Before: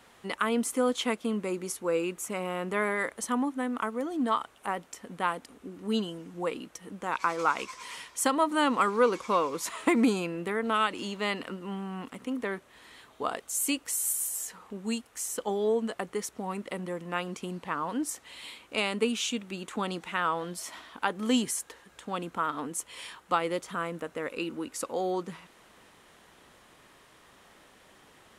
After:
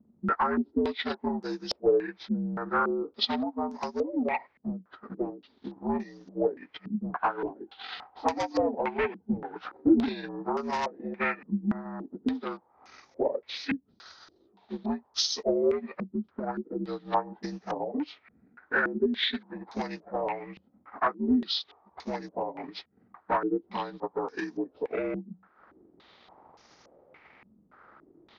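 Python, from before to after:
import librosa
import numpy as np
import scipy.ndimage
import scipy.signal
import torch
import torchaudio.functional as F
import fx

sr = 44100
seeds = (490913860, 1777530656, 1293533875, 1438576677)

y = fx.partial_stretch(x, sr, pct=81)
y = fx.highpass(y, sr, hz=160.0, slope=12, at=(20.96, 21.65))
y = fx.transient(y, sr, attack_db=11, sustain_db=-9)
y = 10.0 ** (-23.5 / 20.0) * np.tanh(y / 10.0 ** (-23.5 / 20.0))
y = fx.filter_held_lowpass(y, sr, hz=3.5, low_hz=210.0, high_hz=5900.0)
y = y * librosa.db_to_amplitude(-1.5)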